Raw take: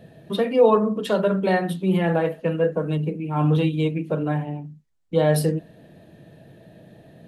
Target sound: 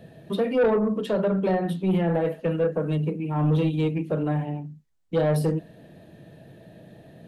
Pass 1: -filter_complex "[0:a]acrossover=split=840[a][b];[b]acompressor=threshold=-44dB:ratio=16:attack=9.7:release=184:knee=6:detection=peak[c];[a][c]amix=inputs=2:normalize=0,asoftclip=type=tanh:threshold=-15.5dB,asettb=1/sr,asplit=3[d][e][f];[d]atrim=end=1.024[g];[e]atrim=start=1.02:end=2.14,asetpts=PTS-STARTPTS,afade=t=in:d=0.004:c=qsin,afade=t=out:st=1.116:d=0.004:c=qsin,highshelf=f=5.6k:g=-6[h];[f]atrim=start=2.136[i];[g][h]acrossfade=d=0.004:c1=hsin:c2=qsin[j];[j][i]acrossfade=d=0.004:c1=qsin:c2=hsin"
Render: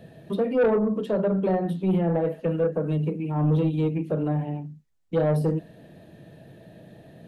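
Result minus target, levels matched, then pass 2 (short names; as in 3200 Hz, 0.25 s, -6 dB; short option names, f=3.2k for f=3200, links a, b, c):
compressor: peak gain reduction +9 dB
-filter_complex "[0:a]acrossover=split=840[a][b];[b]acompressor=threshold=-34.5dB:ratio=16:attack=9.7:release=184:knee=6:detection=peak[c];[a][c]amix=inputs=2:normalize=0,asoftclip=type=tanh:threshold=-15.5dB,asettb=1/sr,asplit=3[d][e][f];[d]atrim=end=1.024[g];[e]atrim=start=1.02:end=2.14,asetpts=PTS-STARTPTS,afade=t=in:d=0.004:c=qsin,afade=t=out:st=1.116:d=0.004:c=qsin,highshelf=f=5.6k:g=-6[h];[f]atrim=start=2.136[i];[g][h]acrossfade=d=0.004:c1=hsin:c2=qsin[j];[j][i]acrossfade=d=0.004:c1=qsin:c2=hsin"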